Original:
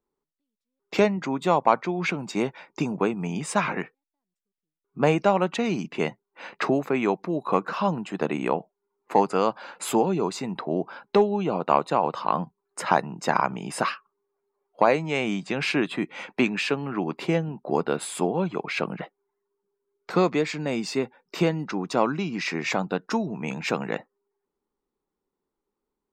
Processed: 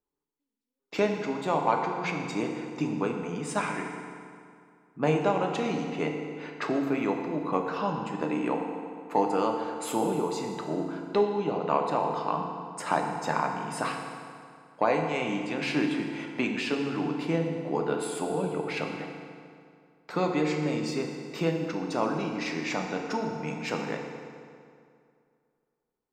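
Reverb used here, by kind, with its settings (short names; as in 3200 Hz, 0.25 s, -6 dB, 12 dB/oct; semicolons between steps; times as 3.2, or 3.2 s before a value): FDN reverb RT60 2.3 s, low-frequency decay 1×, high-frequency decay 0.75×, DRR 1.5 dB; gain -6.5 dB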